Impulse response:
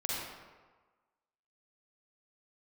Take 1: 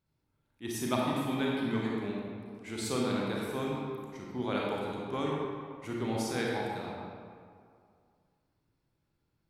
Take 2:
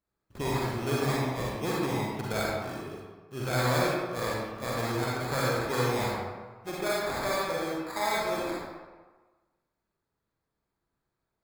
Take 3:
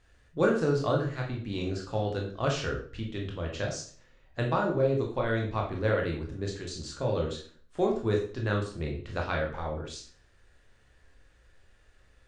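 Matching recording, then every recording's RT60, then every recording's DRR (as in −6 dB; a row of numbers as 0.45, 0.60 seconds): 2; 2.2, 1.4, 0.45 seconds; −3.5, −5.5, −0.5 decibels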